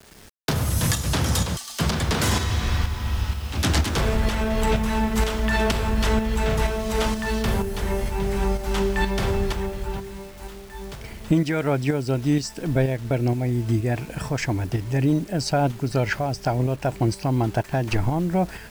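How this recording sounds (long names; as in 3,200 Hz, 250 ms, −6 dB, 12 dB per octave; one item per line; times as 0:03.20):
tremolo saw up 2.1 Hz, depth 50%
a quantiser's noise floor 8 bits, dither none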